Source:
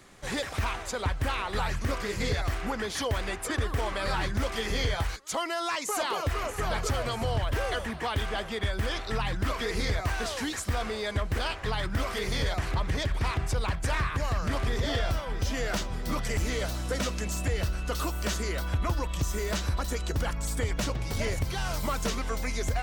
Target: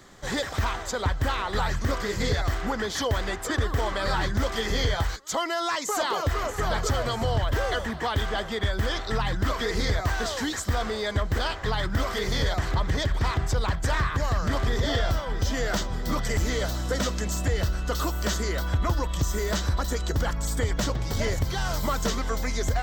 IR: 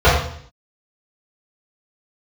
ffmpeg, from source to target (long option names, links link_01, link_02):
-af "superequalizer=12b=0.501:16b=0.355,volume=3.5dB"